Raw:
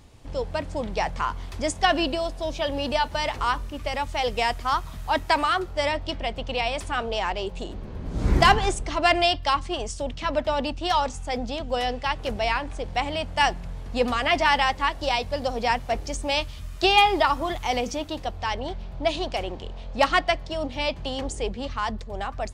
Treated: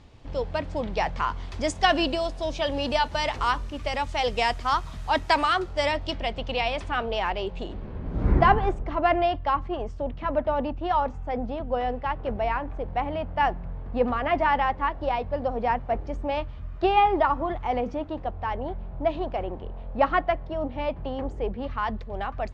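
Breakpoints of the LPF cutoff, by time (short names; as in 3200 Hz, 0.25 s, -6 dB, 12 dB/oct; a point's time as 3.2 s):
1.09 s 4600 Hz
1.89 s 7600 Hz
6.07 s 7600 Hz
6.9 s 3400 Hz
7.73 s 3400 Hz
8.44 s 1400 Hz
21.41 s 1400 Hz
21.98 s 2700 Hz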